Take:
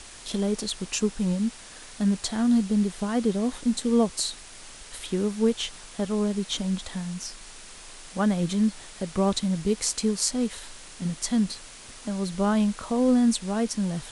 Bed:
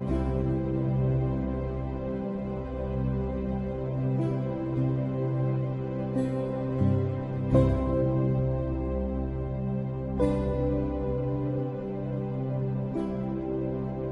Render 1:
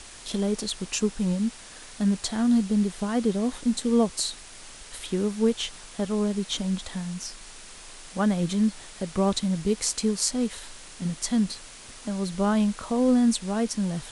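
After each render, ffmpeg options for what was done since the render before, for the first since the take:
-af anull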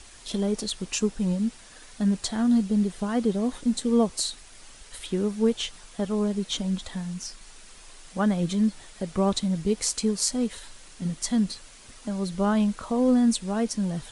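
-af "afftdn=nr=6:nf=-45"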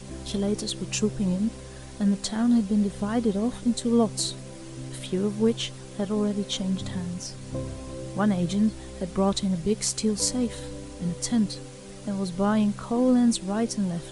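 -filter_complex "[1:a]volume=-11dB[a];[0:a][a]amix=inputs=2:normalize=0"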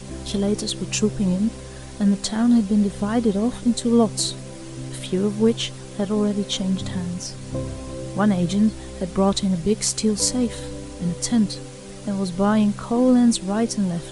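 -af "volume=4.5dB"

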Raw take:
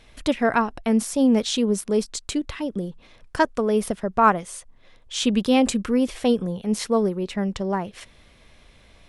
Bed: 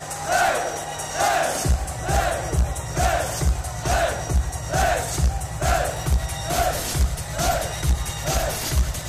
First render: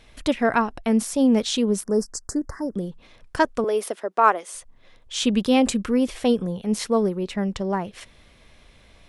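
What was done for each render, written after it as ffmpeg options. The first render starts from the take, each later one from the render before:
-filter_complex "[0:a]asettb=1/sr,asplit=3[a][b][c];[a]atrim=end=1.834[d];[b]atrim=start=1.83:end=2.75,asetpts=PTS-STARTPTS,afade=t=in:d=0.004:c=qsin,afade=t=out:st=0.916:d=0.004:c=qsin,asuperstop=centerf=3000:order=12:qfactor=0.99[e];[c]atrim=start=2.746[f];[d][e]acrossfade=d=0.004:c1=hsin:c2=qsin[g];[g][f]acrossfade=d=0.004:c1=qsin:c2=hsin,asettb=1/sr,asplit=3[h][i][j];[h]atrim=end=3.644[k];[i]atrim=start=3.64:end=4.55,asetpts=PTS-STARTPTS,afade=t=in:d=0.004:c=qsin,afade=t=out:st=0.906:d=0.004:c=qsin,highpass=f=330:w=0.5412,highpass=f=330:w=1.3066[l];[j]atrim=start=4.546[m];[k][l]acrossfade=d=0.004:c1=hsin:c2=qsin[n];[n][m]acrossfade=d=0.004:c1=qsin:c2=hsin"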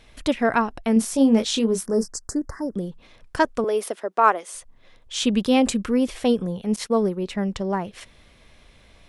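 -filter_complex "[0:a]asettb=1/sr,asplit=3[a][b][c];[a]atrim=end=0.944[d];[b]atrim=start=0.94:end=2.08,asetpts=PTS-STARTPTS,afade=t=in:d=0.004:c=qsin,afade=t=out:st=1.136:d=0.004:c=qsin,asplit=2[e][f];[f]adelay=22,volume=-6dB[g];[e][g]amix=inputs=2:normalize=0,atrim=end_sample=50274[h];[c]atrim=start=2.076[i];[d][h]acrossfade=d=0.004:c1=hsin:c2=qsin[j];[j][i]acrossfade=d=0.004:c1=qsin:c2=hsin,asettb=1/sr,asplit=3[k][l][m];[k]atrim=end=6.764[n];[l]atrim=start=6.76:end=7.26,asetpts=PTS-STARTPTS,afade=t=in:d=0.004:c=qsin,afade=t=out:st=0.496:d=0.004:c=qsin,agate=range=-33dB:threshold=-29dB:ratio=3:release=100:detection=peak[o];[m]atrim=start=7.256[p];[n][o]acrossfade=d=0.004:c1=hsin:c2=qsin[q];[q][p]acrossfade=d=0.004:c1=qsin:c2=hsin"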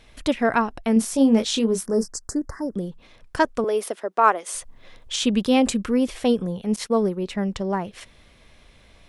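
-filter_complex "[0:a]asettb=1/sr,asplit=3[a][b][c];[a]atrim=end=4.464[d];[b]atrim=start=4.46:end=5.16,asetpts=PTS-STARTPTS,afade=t=in:d=0.004:c=qsin,afade=t=out:st=0.696:d=0.004:c=qsin,acontrast=51[e];[c]atrim=start=5.156[f];[d][e]acrossfade=d=0.004:c1=hsin:c2=qsin[g];[g][f]acrossfade=d=0.004:c1=qsin:c2=hsin"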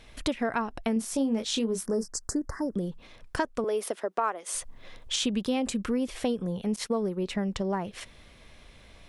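-af "acompressor=threshold=-26dB:ratio=4"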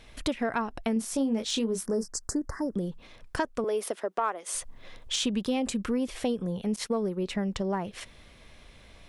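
-af "asoftclip=type=tanh:threshold=-13.5dB"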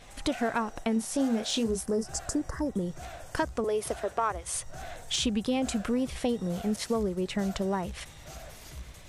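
-filter_complex "[1:a]volume=-22.5dB[a];[0:a][a]amix=inputs=2:normalize=0"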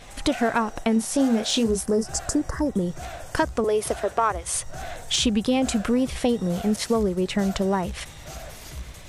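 -af "volume=6.5dB"

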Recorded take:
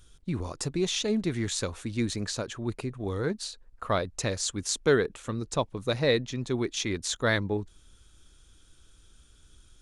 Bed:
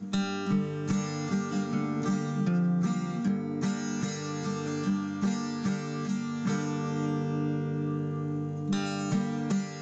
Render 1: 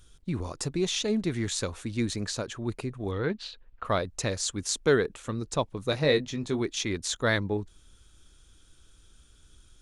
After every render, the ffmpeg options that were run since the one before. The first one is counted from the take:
-filter_complex "[0:a]asettb=1/sr,asplit=3[a][b][c];[a]atrim=end=3.114[d];[b]atrim=start=3.11:end=3.85,asetpts=PTS-STARTPTS,afade=t=in:d=0.004:c=qsin,afade=t=out:st=0.736:d=0.004:c=qsin,lowpass=f=3k:t=q:w=2[e];[c]atrim=start=3.846[f];[d][e]acrossfade=d=0.004:c1=hsin:c2=qsin[g];[g][f]acrossfade=d=0.004:c1=qsin:c2=hsin,asettb=1/sr,asplit=3[h][i][j];[h]atrim=end=5.904[k];[i]atrim=start=5.9:end=6.61,asetpts=PTS-STARTPTS,afade=t=in:d=0.004:c=qsin,afade=t=out:st=0.706:d=0.004:c=qsin,asplit=2[l][m];[m]adelay=20,volume=-8dB[n];[l][n]amix=inputs=2:normalize=0,atrim=end_sample=31311[o];[j]atrim=start=6.606[p];[k][o]acrossfade=d=0.004:c1=hsin:c2=qsin[q];[q][p]acrossfade=d=0.004:c1=qsin:c2=hsin"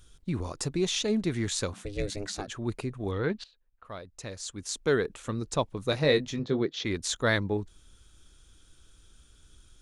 -filter_complex "[0:a]asettb=1/sr,asplit=3[a][b][c];[a]atrim=end=1.734[d];[b]atrim=start=1.73:end=2.47,asetpts=PTS-STARTPTS,afade=t=in:d=0.004:c=qsin,afade=t=out:st=0.736:d=0.004:c=qsin,aeval=exprs='val(0)*sin(2*PI*200*n/s)':c=same[e];[c]atrim=start=2.466[f];[d][e]acrossfade=d=0.004:c1=hsin:c2=qsin[g];[g][f]acrossfade=d=0.004:c1=qsin:c2=hsin,asettb=1/sr,asplit=3[h][i][j];[h]atrim=end=6.394[k];[i]atrim=start=6.39:end=6.85,asetpts=PTS-STARTPTS,afade=t=in:d=0.004:c=qsin,afade=t=out:st=0.456:d=0.004:c=qsin,highpass=110,equalizer=f=150:t=q:w=4:g=7,equalizer=f=500:t=q:w=4:g=8,equalizer=f=940:t=q:w=4:g=-5,equalizer=f=2.5k:t=q:w=4:g=-8,lowpass=f=4.5k:w=0.5412,lowpass=f=4.5k:w=1.3066[l];[j]atrim=start=6.846[m];[k][l]acrossfade=d=0.004:c1=hsin:c2=qsin[n];[n][m]acrossfade=d=0.004:c1=qsin:c2=hsin,asplit=2[o][p];[o]atrim=end=3.44,asetpts=PTS-STARTPTS,afade=t=out:st=3.436:d=0.004:c=hsin:silence=0.11885[q];[p]atrim=start=3.44,asetpts=PTS-STARTPTS,afade=t=in:d=1.79:c=qua:silence=0.11885[r];[q][r]concat=n=2:v=0:a=1"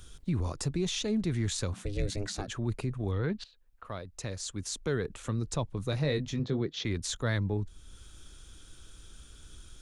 -filter_complex "[0:a]acrossover=split=170[a][b];[b]acompressor=threshold=-53dB:ratio=1.5[c];[a][c]amix=inputs=2:normalize=0,asplit=2[d][e];[e]alimiter=level_in=8dB:limit=-24dB:level=0:latency=1:release=17,volume=-8dB,volume=0.5dB[f];[d][f]amix=inputs=2:normalize=0"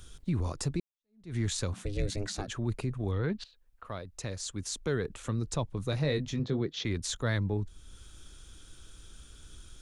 -filter_complex "[0:a]asplit=2[a][b];[a]atrim=end=0.8,asetpts=PTS-STARTPTS,afade=t=out:st=0.796:d=0.004:c=hsin[c];[b]atrim=start=0.8,asetpts=PTS-STARTPTS,afade=t=in:d=0.56:c=exp[d];[c][d]concat=n=2:v=0:a=1"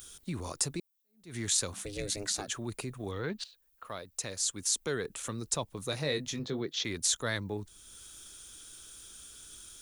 -af "aemphasis=mode=production:type=bsi"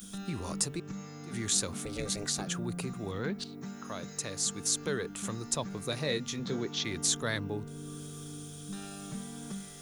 -filter_complex "[1:a]volume=-12.5dB[a];[0:a][a]amix=inputs=2:normalize=0"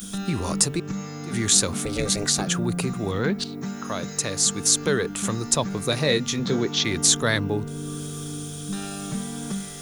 -af "volume=10.5dB"

